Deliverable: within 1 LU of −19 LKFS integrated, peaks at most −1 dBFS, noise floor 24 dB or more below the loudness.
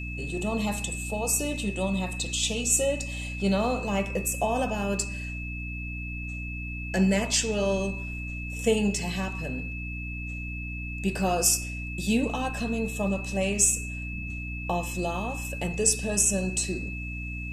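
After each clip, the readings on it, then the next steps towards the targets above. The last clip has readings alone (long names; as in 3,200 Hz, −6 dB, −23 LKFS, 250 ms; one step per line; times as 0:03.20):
mains hum 60 Hz; hum harmonics up to 300 Hz; level of the hum −33 dBFS; interfering tone 2,600 Hz; level of the tone −37 dBFS; integrated loudness −27.5 LKFS; sample peak −8.0 dBFS; target loudness −19.0 LKFS
→ hum removal 60 Hz, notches 5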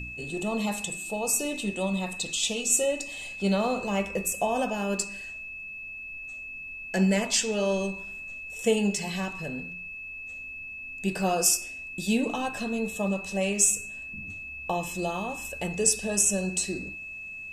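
mains hum none found; interfering tone 2,600 Hz; level of the tone −37 dBFS
→ notch filter 2,600 Hz, Q 30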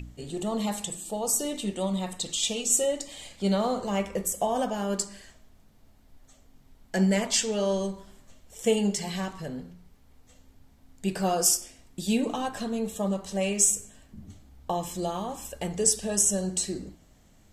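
interfering tone none found; integrated loudness −27.5 LKFS; sample peak −8.5 dBFS; target loudness −19.0 LKFS
→ level +8.5 dB
brickwall limiter −1 dBFS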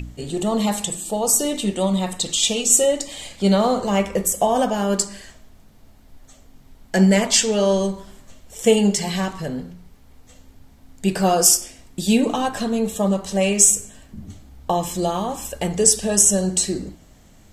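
integrated loudness −19.0 LKFS; sample peak −1.0 dBFS; background noise floor −49 dBFS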